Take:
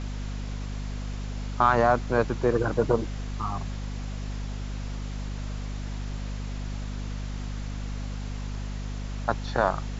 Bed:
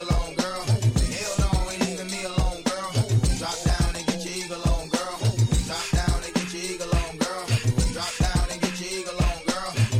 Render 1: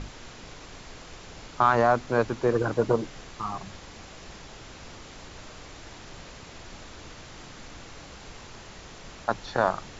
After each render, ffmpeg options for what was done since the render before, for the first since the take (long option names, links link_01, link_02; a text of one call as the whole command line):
ffmpeg -i in.wav -af "bandreject=frequency=50:width_type=h:width=6,bandreject=frequency=100:width_type=h:width=6,bandreject=frequency=150:width_type=h:width=6,bandreject=frequency=200:width_type=h:width=6,bandreject=frequency=250:width_type=h:width=6" out.wav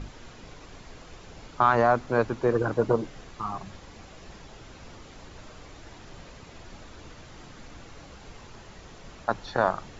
ffmpeg -i in.wav -af "afftdn=noise_reduction=6:noise_floor=-46" out.wav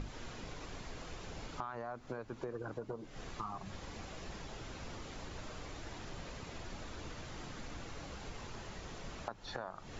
ffmpeg -i in.wav -af "alimiter=limit=-17.5dB:level=0:latency=1:release=258,acompressor=threshold=-39dB:ratio=8" out.wav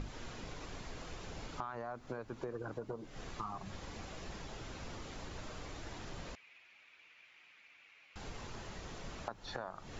ffmpeg -i in.wav -filter_complex "[0:a]asettb=1/sr,asplit=3[link_01][link_02][link_03];[link_01]atrim=end=6.354[link_04];[link_02]atrim=start=6.35:end=8.16,asetpts=PTS-STARTPTS,afade=type=in:duration=0.004:curve=qsin,afade=type=out:start_time=1.806:duration=0.004:curve=qsin,bandpass=frequency=2400:width_type=q:width=5.5[link_05];[link_03]atrim=start=8.156[link_06];[link_04][link_05]acrossfade=duration=0.004:curve1=hsin:curve2=qsin[link_07];[link_07][link_06]acrossfade=duration=0.004:curve1=qsin:curve2=hsin" out.wav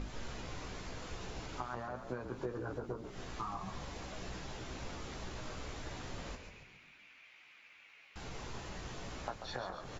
ffmpeg -i in.wav -filter_complex "[0:a]asplit=2[link_01][link_02];[link_02]adelay=16,volume=-5dB[link_03];[link_01][link_03]amix=inputs=2:normalize=0,asplit=7[link_04][link_05][link_06][link_07][link_08][link_09][link_10];[link_05]adelay=138,afreqshift=-50,volume=-8dB[link_11];[link_06]adelay=276,afreqshift=-100,volume=-13.7dB[link_12];[link_07]adelay=414,afreqshift=-150,volume=-19.4dB[link_13];[link_08]adelay=552,afreqshift=-200,volume=-25dB[link_14];[link_09]adelay=690,afreqshift=-250,volume=-30.7dB[link_15];[link_10]adelay=828,afreqshift=-300,volume=-36.4dB[link_16];[link_04][link_11][link_12][link_13][link_14][link_15][link_16]amix=inputs=7:normalize=0" out.wav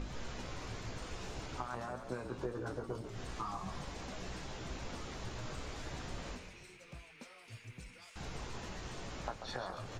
ffmpeg -i in.wav -i bed.wav -filter_complex "[1:a]volume=-29dB[link_01];[0:a][link_01]amix=inputs=2:normalize=0" out.wav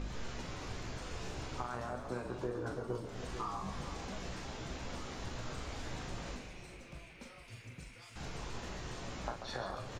ffmpeg -i in.wav -filter_complex "[0:a]asplit=2[link_01][link_02];[link_02]adelay=41,volume=-7dB[link_03];[link_01][link_03]amix=inputs=2:normalize=0,asplit=2[link_04][link_05];[link_05]adelay=450,lowpass=frequency=1100:poles=1,volume=-10dB,asplit=2[link_06][link_07];[link_07]adelay=450,lowpass=frequency=1100:poles=1,volume=0.47,asplit=2[link_08][link_09];[link_09]adelay=450,lowpass=frequency=1100:poles=1,volume=0.47,asplit=2[link_10][link_11];[link_11]adelay=450,lowpass=frequency=1100:poles=1,volume=0.47,asplit=2[link_12][link_13];[link_13]adelay=450,lowpass=frequency=1100:poles=1,volume=0.47[link_14];[link_04][link_06][link_08][link_10][link_12][link_14]amix=inputs=6:normalize=0" out.wav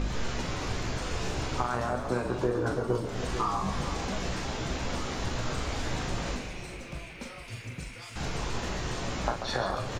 ffmpeg -i in.wav -af "volume=10.5dB" out.wav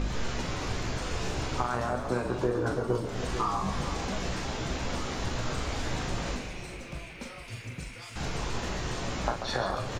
ffmpeg -i in.wav -af anull out.wav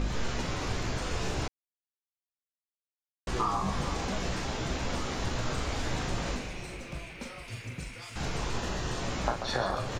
ffmpeg -i in.wav -filter_complex "[0:a]asettb=1/sr,asplit=3[link_01][link_02][link_03];[link_01]atrim=end=8.594[link_04];[link_02]atrim=start=8.59:end=9,asetpts=PTS-STARTPTS,afade=type=in:duration=0.004:curve=qsin,afade=type=out:start_time=0.406:duration=0.004:curve=qsin,bandreject=frequency=2200:width=8.5[link_05];[link_03]atrim=start=8.996[link_06];[link_04][link_05]acrossfade=duration=0.004:curve1=hsin:curve2=qsin[link_07];[link_07][link_06]acrossfade=duration=0.004:curve1=qsin:curve2=hsin,asplit=3[link_08][link_09][link_10];[link_08]atrim=end=1.48,asetpts=PTS-STARTPTS,afade=type=out:start_time=1.476:duration=0.004:curve=hsin[link_11];[link_09]atrim=start=1.48:end=3.27,asetpts=PTS-STARTPTS,volume=0[link_12];[link_10]atrim=start=3.27,asetpts=PTS-STARTPTS,afade=type=in:duration=0.004:curve=hsin[link_13];[link_11][link_12][link_13]concat=n=3:v=0:a=1" out.wav